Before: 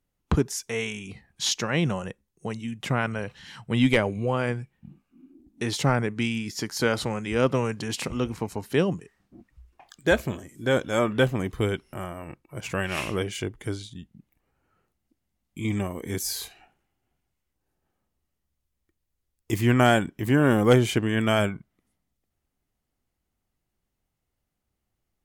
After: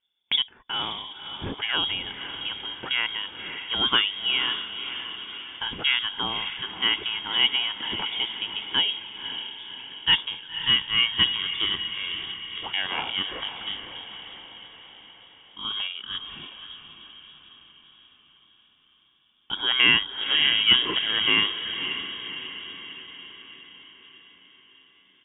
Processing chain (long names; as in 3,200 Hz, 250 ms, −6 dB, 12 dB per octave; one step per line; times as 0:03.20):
parametric band 110 Hz −10.5 dB 0.84 octaves
comb filter 1.6 ms, depth 42%
frequency shifter +61 Hz
feedback delay with all-pass diffusion 545 ms, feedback 56%, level −9 dB
voice inversion scrambler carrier 3,500 Hz